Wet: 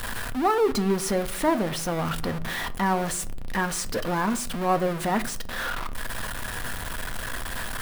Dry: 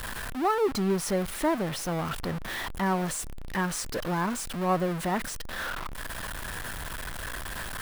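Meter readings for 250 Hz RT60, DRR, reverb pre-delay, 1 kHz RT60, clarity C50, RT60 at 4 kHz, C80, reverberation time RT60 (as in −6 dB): 0.80 s, 10.5 dB, 4 ms, 0.50 s, 20.0 dB, 0.30 s, 22.5 dB, 0.65 s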